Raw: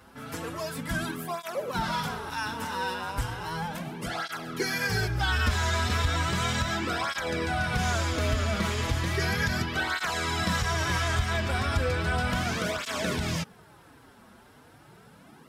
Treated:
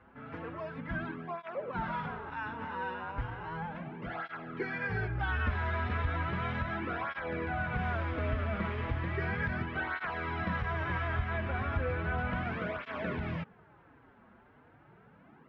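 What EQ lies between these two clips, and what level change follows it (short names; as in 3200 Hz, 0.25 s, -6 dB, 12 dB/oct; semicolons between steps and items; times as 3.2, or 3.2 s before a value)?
LPF 2400 Hz 24 dB/oct; -5.5 dB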